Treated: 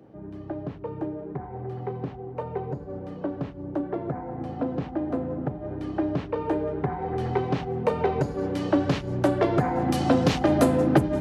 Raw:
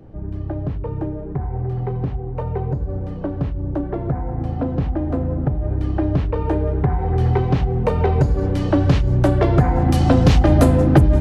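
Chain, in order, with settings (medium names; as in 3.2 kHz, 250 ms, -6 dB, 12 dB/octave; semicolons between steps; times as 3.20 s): high-pass 200 Hz 12 dB/octave; trim -3.5 dB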